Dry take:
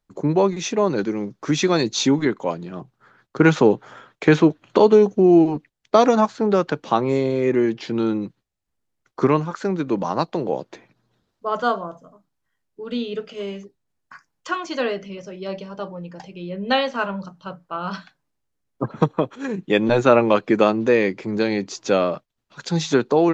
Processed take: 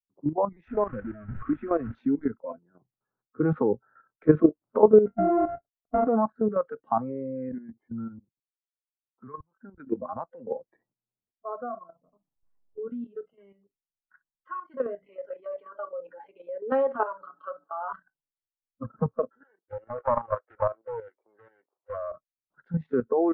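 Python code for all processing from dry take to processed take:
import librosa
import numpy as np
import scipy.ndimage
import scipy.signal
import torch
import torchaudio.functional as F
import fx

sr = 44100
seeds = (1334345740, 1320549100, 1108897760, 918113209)

y = fx.chain(x, sr, fx.delta_mod(bps=64000, step_db=-19.5),
    fx.lowpass(hz=3100.0, slope=24), at=(0.68, 1.95))
y = fx.chain(y, sr, fx.sample_sort(block=64),
    fx.lowpass(hz=1300.0, slope=6), at=(5.06, 6.07))
y = fx.chain(y, sr, fx.lowpass(hz=2100.0, slope=12),
    fx.level_steps(step_db=24), at=(7.49, 9.78))
y = fx.chain(y, sr, fx.peak_eq(hz=2500.0, db=-6.5, octaves=1.2),
    fx.band_squash(depth_pct=100), at=(11.52, 12.87))
y = fx.chain(y, sr, fx.steep_highpass(hz=280.0, slope=36),
    fx.comb(ms=7.0, depth=0.74),
    fx.env_flatten(amount_pct=50), at=(15.06, 17.93))
y = fx.chain(y, sr, fx.median_filter(points=25),
    fx.highpass(hz=530.0, slope=24),
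    fx.doppler_dist(depth_ms=0.44), at=(19.43, 22.12))
y = scipy.signal.sosfilt(scipy.signal.butter(4, 1100.0, 'lowpass', fs=sr, output='sos'), y)
y = fx.noise_reduce_blind(y, sr, reduce_db=24)
y = fx.level_steps(y, sr, step_db=11)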